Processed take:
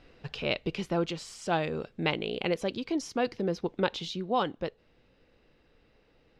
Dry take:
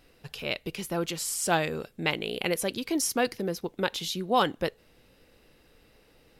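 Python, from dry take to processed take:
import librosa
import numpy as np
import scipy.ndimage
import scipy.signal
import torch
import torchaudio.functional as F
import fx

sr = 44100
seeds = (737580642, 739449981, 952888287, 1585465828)

y = fx.dynamic_eq(x, sr, hz=1800.0, q=1.7, threshold_db=-45.0, ratio=4.0, max_db=-4)
y = fx.rider(y, sr, range_db=4, speed_s=0.5)
y = fx.air_absorb(y, sr, metres=150.0)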